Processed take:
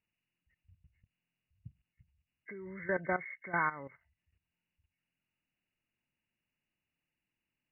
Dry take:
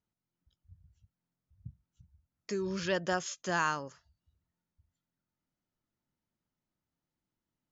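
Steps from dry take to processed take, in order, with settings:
hearing-aid frequency compression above 1,500 Hz 4 to 1
output level in coarse steps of 15 dB

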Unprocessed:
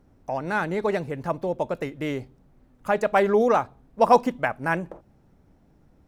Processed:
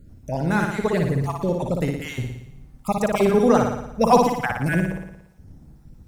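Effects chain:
time-frequency cells dropped at random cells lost 25%
bass and treble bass +14 dB, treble +11 dB
on a send: flutter between parallel walls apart 9.9 metres, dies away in 0.8 s

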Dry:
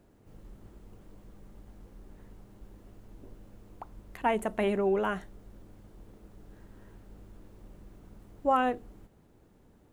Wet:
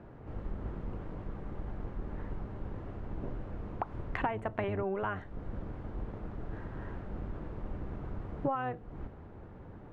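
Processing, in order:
sub-octave generator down 1 octave, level +3 dB
low-pass filter 1,300 Hz 12 dB per octave
tilt shelving filter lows −8.5 dB
downward compressor 16 to 1, threshold −46 dBFS, peak gain reduction 24.5 dB
one half of a high-frequency compander decoder only
level +16 dB

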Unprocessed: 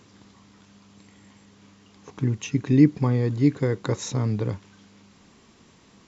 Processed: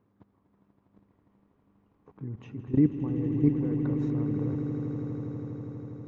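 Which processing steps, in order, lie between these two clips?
low-pass filter 1,100 Hz 12 dB per octave
output level in coarse steps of 17 dB
on a send: echo that builds up and dies away 81 ms, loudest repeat 8, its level −11.5 dB
on the sum: level −1.5 dB

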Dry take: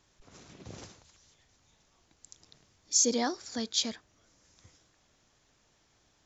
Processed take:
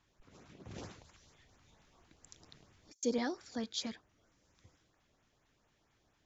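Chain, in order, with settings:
bass and treble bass −1 dB, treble −10 dB
0:00.71–0:03.03: compressor whose output falls as the input rises −48 dBFS, ratio −0.5
auto-filter notch saw up 4.4 Hz 370–5,500 Hz
level −3 dB

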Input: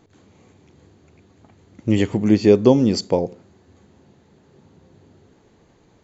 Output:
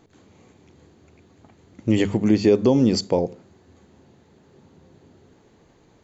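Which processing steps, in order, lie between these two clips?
mains-hum notches 50/100/150/200 Hz
brickwall limiter −7 dBFS, peak gain reduction 5.5 dB

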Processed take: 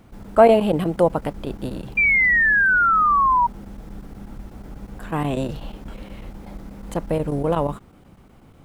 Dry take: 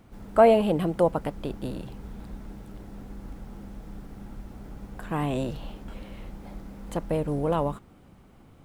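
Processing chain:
square-wave tremolo 8.2 Hz, depth 65%, duty 90%
sound drawn into the spectrogram fall, 0:01.97–0:03.47, 940–2,400 Hz −21 dBFS
level +4.5 dB

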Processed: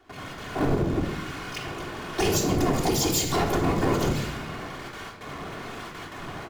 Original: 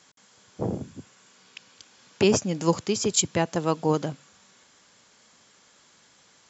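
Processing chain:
low-pass that shuts in the quiet parts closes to 1,500 Hz, open at −21 dBFS
two-band tremolo in antiphase 1.1 Hz, depth 50%, crossover 1,400 Hz
brickwall limiter −16.5 dBFS, peak gain reduction 9.5 dB
pitch-shifted copies added −7 semitones −8 dB, +12 semitones −7 dB
random phases in short frames
downward compressor 10 to 1, threshold −34 dBFS, peak gain reduction 15 dB
power curve on the samples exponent 0.5
noise gate with hold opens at −39 dBFS
convolution reverb RT60 0.90 s, pre-delay 3 ms, DRR 0.5 dB
level +4.5 dB

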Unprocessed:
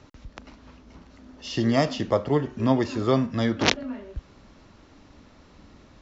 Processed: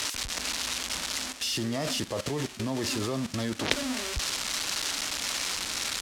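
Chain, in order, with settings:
spike at every zero crossing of −12.5 dBFS
low-pass filter 6,400 Hz 12 dB per octave
0:01.32–0:03.71: output level in coarse steps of 15 dB

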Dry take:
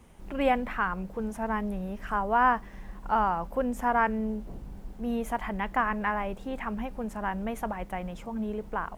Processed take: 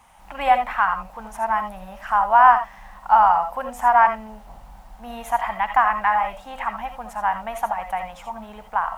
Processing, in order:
low shelf with overshoot 570 Hz −12 dB, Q 3
on a send: convolution reverb, pre-delay 45 ms, DRR 7 dB
on the sum: level +5 dB

